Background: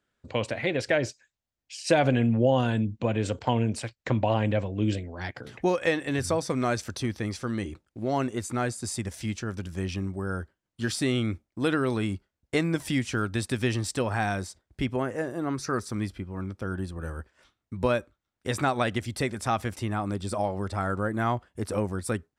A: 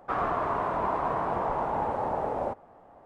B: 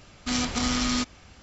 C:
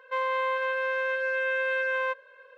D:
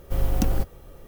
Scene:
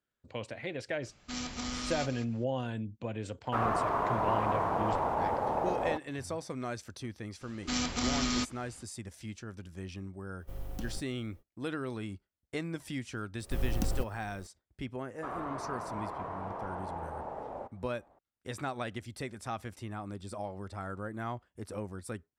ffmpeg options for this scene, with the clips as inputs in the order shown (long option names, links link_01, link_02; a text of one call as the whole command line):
ffmpeg -i bed.wav -i cue0.wav -i cue1.wav -i cue2.wav -i cue3.wav -filter_complex "[2:a]asplit=2[link_01][link_02];[1:a]asplit=2[link_03][link_04];[4:a]asplit=2[link_05][link_06];[0:a]volume=-11dB[link_07];[link_01]aecho=1:1:184:0.282[link_08];[link_03]aeval=exprs='sgn(val(0))*max(abs(val(0))-0.00178,0)':channel_layout=same[link_09];[link_08]atrim=end=1.42,asetpts=PTS-STARTPTS,volume=-11.5dB,afade=type=in:duration=0.004:curve=hsin,afade=type=out:start_time=1.416:duration=0.004:curve=hsin,adelay=1020[link_10];[link_09]atrim=end=3.05,asetpts=PTS-STARTPTS,volume=-1.5dB,afade=type=in:duration=0.004:curve=hsin,afade=type=out:start_time=3.046:duration=0.004:curve=hsin,adelay=3440[link_11];[link_02]atrim=end=1.42,asetpts=PTS-STARTPTS,volume=-5.5dB,afade=type=in:duration=0.004:curve=hsin,afade=type=out:start_time=1.416:duration=0.004:curve=hsin,adelay=7410[link_12];[link_05]atrim=end=1.07,asetpts=PTS-STARTPTS,volume=-17.5dB,afade=type=in:duration=0.05,afade=type=out:start_time=1.02:duration=0.05,adelay=10370[link_13];[link_06]atrim=end=1.07,asetpts=PTS-STARTPTS,volume=-9dB,afade=type=in:duration=0.004:curve=hsin,afade=type=out:start_time=1.066:duration=0.004:curve=hsin,adelay=13400[link_14];[link_04]atrim=end=3.05,asetpts=PTS-STARTPTS,volume=-11dB,afade=type=in:duration=0.004:curve=hsin,afade=type=out:start_time=3.046:duration=0.004:curve=hsin,adelay=15140[link_15];[link_07][link_10][link_11][link_12][link_13][link_14][link_15]amix=inputs=7:normalize=0" out.wav